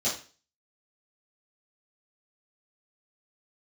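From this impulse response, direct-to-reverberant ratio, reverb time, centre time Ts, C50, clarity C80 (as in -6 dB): -10.5 dB, 0.35 s, 30 ms, 6.5 dB, 13.0 dB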